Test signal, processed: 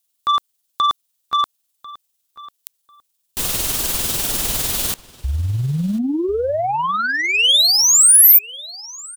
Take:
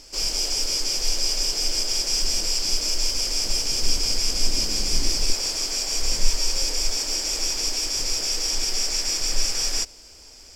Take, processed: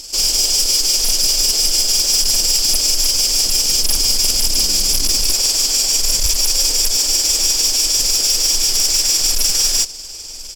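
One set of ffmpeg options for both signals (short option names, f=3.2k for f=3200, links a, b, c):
-filter_complex "[0:a]tremolo=f=20:d=0.41,aeval=exprs='0.501*sin(PI/2*3.16*val(0)/0.501)':c=same,asplit=2[a][b];[b]adelay=1045,lowpass=f=3.4k:p=1,volume=-18.5dB,asplit=2[c][d];[d]adelay=1045,lowpass=f=3.4k:p=1,volume=0.2[e];[c][e]amix=inputs=2:normalize=0[f];[a][f]amix=inputs=2:normalize=0,aexciter=amount=2.4:drive=7.3:freq=2.9k,volume=-7.5dB"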